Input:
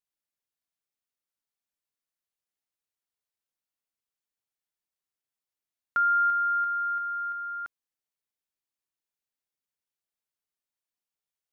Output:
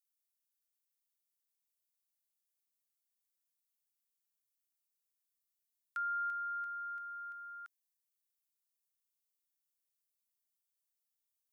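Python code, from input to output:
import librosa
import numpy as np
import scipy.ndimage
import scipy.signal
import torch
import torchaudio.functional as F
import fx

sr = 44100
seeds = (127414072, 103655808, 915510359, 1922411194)

y = scipy.signal.sosfilt(scipy.signal.butter(2, 970.0, 'highpass', fs=sr, output='sos'), x)
y = np.diff(y, prepend=0.0)
y = y * librosa.db_to_amplitude(1.5)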